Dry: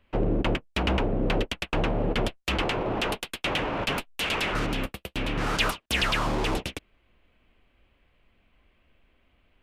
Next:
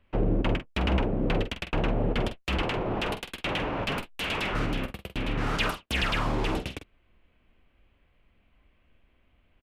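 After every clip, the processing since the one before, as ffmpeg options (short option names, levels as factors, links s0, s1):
-filter_complex "[0:a]bass=f=250:g=3,treble=f=4000:g=-5,asplit=2[s0][s1];[s1]adelay=47,volume=0.316[s2];[s0][s2]amix=inputs=2:normalize=0,volume=0.75"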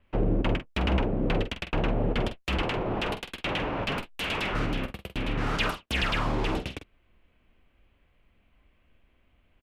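-af "adynamicequalizer=threshold=0.00282:dfrequency=7100:dqfactor=0.7:tfrequency=7100:tqfactor=0.7:attack=5:release=100:ratio=0.375:range=2.5:mode=cutabove:tftype=highshelf"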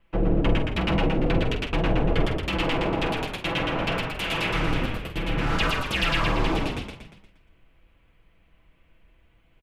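-filter_complex "[0:a]aecho=1:1:6:0.76,asplit=7[s0][s1][s2][s3][s4][s5][s6];[s1]adelay=118,afreqshift=-39,volume=0.708[s7];[s2]adelay=236,afreqshift=-78,volume=0.331[s8];[s3]adelay=354,afreqshift=-117,volume=0.157[s9];[s4]adelay=472,afreqshift=-156,volume=0.0733[s10];[s5]adelay=590,afreqshift=-195,volume=0.0347[s11];[s6]adelay=708,afreqshift=-234,volume=0.0162[s12];[s0][s7][s8][s9][s10][s11][s12]amix=inputs=7:normalize=0"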